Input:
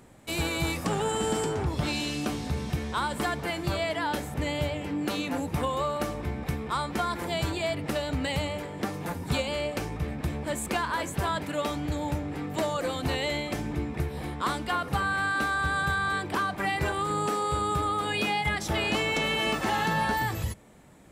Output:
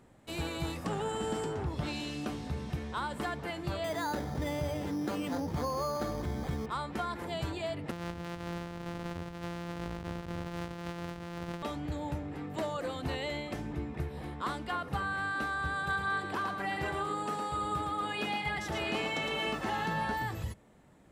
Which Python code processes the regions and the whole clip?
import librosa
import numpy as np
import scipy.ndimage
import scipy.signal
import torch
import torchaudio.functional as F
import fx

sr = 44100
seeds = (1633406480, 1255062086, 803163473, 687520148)

y = fx.chain(x, sr, fx.lowpass(hz=3000.0, slope=12),
    fx.resample_bad(factor=8, down='filtered', up='hold'),
    fx.env_flatten(amount_pct=50), at=(3.84, 6.66))
y = fx.chain(y, sr, fx.sample_sort(block=256),
    fx.high_shelf(hz=7500.0, db=-8.0),
    fx.over_compress(threshold_db=-33.0, ratio=-1.0), at=(7.91, 11.63))
y = fx.chain(y, sr, fx.low_shelf(hz=100.0, db=-8.5),
    fx.echo_single(ms=112, db=-5.0), at=(15.74, 19.49))
y = fx.high_shelf(y, sr, hz=5000.0, db=-7.5)
y = fx.notch(y, sr, hz=2300.0, q=21.0)
y = F.gain(torch.from_numpy(y), -6.0).numpy()